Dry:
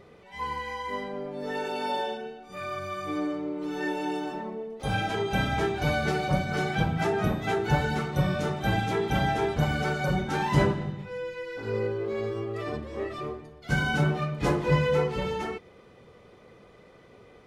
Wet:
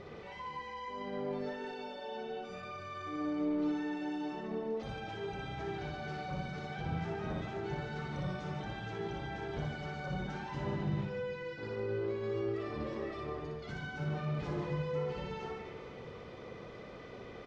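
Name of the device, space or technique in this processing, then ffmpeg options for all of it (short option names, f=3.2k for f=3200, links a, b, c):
de-esser from a sidechain: -filter_complex "[0:a]asplit=2[a][b];[b]highpass=f=5.5k:p=1,apad=whole_len=770399[c];[a][c]sidechaincompress=threshold=-58dB:ratio=8:attack=0.5:release=36,lowpass=f=6.2k:w=0.5412,lowpass=f=6.2k:w=1.3066,aecho=1:1:60|144|261.6|426.2|656.7:0.631|0.398|0.251|0.158|0.1,volume=3dB"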